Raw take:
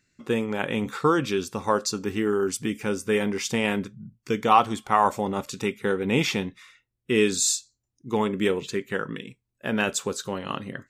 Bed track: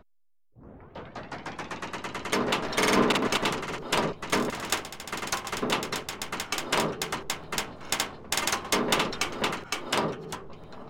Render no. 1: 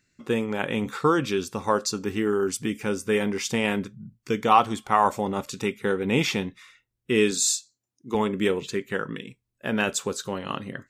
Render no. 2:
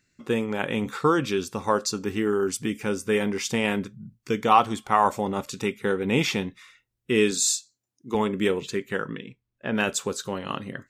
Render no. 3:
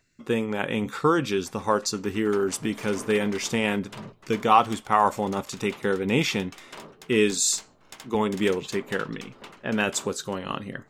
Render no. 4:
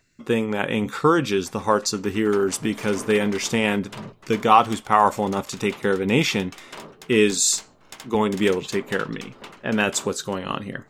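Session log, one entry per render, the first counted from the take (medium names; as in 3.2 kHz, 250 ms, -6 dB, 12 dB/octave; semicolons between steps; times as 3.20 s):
7.31–8.15 s: high-pass 170 Hz
9.12–9.75 s: distance through air 150 m
add bed track -16.5 dB
trim +3.5 dB; peak limiter -2 dBFS, peak gain reduction 0.5 dB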